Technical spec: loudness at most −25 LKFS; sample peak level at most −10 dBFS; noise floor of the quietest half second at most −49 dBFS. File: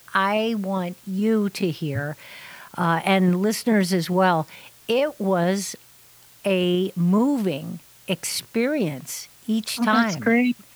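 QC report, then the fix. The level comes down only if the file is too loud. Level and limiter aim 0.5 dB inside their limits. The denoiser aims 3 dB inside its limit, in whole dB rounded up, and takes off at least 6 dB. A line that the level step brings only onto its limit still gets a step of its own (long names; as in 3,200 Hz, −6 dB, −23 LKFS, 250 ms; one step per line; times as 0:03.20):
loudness −22.5 LKFS: out of spec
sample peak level −5.5 dBFS: out of spec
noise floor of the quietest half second −51 dBFS: in spec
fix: level −3 dB
brickwall limiter −10.5 dBFS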